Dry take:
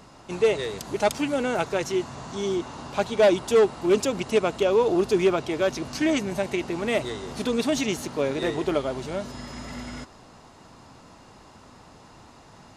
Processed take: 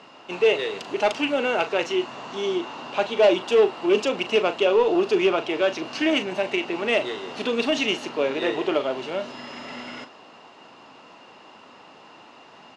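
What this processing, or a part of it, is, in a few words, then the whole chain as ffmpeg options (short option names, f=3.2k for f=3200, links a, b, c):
intercom: -filter_complex "[0:a]highpass=310,lowpass=4.1k,equalizer=f=2.8k:t=o:w=0.25:g=10,asoftclip=type=tanh:threshold=-12dB,asplit=2[a][b];[b]adelay=38,volume=-11dB[c];[a][c]amix=inputs=2:normalize=0,volume=3dB"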